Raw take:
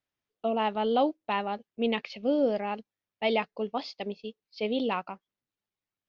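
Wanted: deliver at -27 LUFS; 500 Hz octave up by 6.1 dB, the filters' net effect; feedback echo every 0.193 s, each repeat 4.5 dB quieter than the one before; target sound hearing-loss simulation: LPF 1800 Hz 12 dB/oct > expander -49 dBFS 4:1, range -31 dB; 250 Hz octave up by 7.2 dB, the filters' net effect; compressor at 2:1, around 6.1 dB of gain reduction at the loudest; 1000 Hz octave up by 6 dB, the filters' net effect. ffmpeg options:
-af "equalizer=f=250:t=o:g=7,equalizer=f=500:t=o:g=4,equalizer=f=1k:t=o:g=6,acompressor=threshold=-25dB:ratio=2,lowpass=1.8k,aecho=1:1:193|386|579|772|965|1158|1351|1544|1737:0.596|0.357|0.214|0.129|0.0772|0.0463|0.0278|0.0167|0.01,agate=range=-31dB:threshold=-49dB:ratio=4,volume=0.5dB"

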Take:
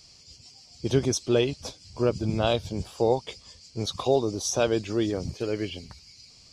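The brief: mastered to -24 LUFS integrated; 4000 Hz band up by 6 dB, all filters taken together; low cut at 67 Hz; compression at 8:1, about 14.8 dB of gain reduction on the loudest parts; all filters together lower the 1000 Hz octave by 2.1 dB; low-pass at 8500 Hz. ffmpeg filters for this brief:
-af "highpass=67,lowpass=8.5k,equalizer=f=1k:t=o:g=-3.5,equalizer=f=4k:t=o:g=8,acompressor=threshold=-33dB:ratio=8,volume=14.5dB"

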